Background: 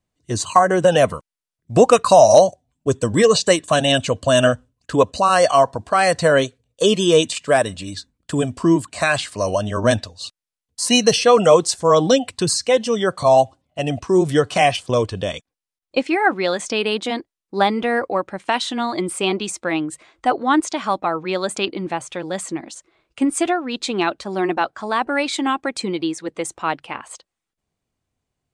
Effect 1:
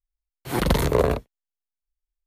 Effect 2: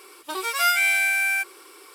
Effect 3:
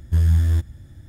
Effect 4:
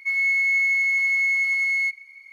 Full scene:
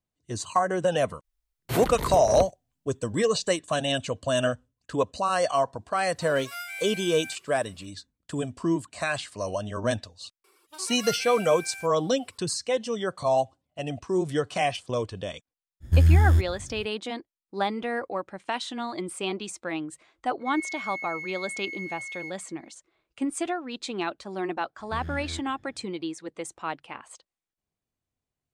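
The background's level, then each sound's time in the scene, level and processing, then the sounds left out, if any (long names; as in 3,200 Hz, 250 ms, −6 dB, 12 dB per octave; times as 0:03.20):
background −10 dB
0:01.24: mix in 1 −2 dB + compressor whose output falls as the input rises −29 dBFS
0:05.92: mix in 2 −17 dB
0:10.44: mix in 2 −14.5 dB + reverb reduction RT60 0.78 s
0:15.80: mix in 3 −0.5 dB, fades 0.05 s
0:20.40: mix in 4 −16 dB
0:24.79: mix in 3 −7.5 dB + three-way crossover with the lows and the highs turned down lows −16 dB, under 160 Hz, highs −19 dB, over 4,500 Hz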